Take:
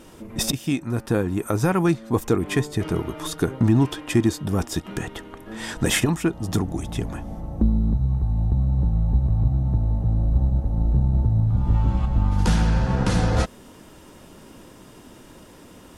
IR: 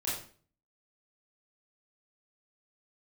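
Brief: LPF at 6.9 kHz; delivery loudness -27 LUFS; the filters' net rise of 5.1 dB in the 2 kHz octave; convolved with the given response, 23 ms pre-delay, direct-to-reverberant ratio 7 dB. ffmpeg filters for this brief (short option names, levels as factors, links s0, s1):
-filter_complex "[0:a]lowpass=6900,equalizer=f=2000:t=o:g=6.5,asplit=2[s0][s1];[1:a]atrim=start_sample=2205,adelay=23[s2];[s1][s2]afir=irnorm=-1:irlink=0,volume=0.266[s3];[s0][s3]amix=inputs=2:normalize=0,volume=0.531"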